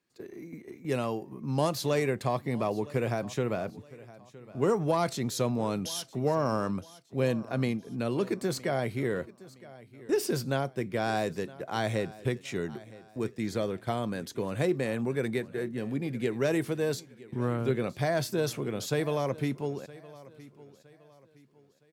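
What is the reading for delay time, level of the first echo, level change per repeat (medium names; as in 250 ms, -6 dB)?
965 ms, -19.5 dB, -9.0 dB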